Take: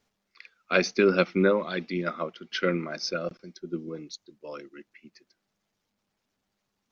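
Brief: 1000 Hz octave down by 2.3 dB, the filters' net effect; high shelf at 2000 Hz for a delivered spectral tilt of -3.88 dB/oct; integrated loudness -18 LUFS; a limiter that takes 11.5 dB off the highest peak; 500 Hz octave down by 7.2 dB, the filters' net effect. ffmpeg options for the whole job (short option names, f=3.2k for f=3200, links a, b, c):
-af "equalizer=f=500:t=o:g=-9,equalizer=f=1k:t=o:g=-3.5,highshelf=f=2k:g=4,volume=15dB,alimiter=limit=-4dB:level=0:latency=1"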